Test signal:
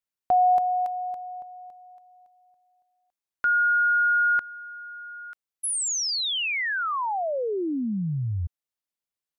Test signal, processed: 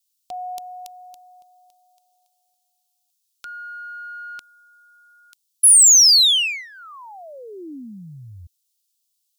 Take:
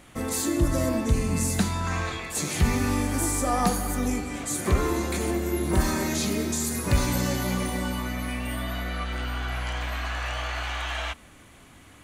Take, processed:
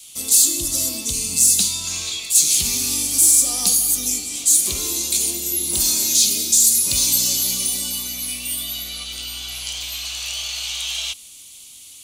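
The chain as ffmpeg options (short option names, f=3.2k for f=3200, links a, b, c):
-af "adynamicequalizer=threshold=0.0126:dfrequency=300:dqfactor=1.3:tfrequency=300:tqfactor=1.3:attack=5:release=100:ratio=0.375:range=2.5:mode=boostabove:tftype=bell,aexciter=amount=12.9:drive=9.4:freq=2.8k,volume=-12.5dB"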